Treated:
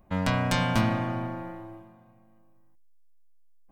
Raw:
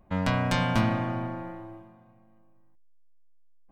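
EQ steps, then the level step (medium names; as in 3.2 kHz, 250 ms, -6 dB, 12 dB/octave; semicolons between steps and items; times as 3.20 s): treble shelf 6.5 kHz +7.5 dB; 0.0 dB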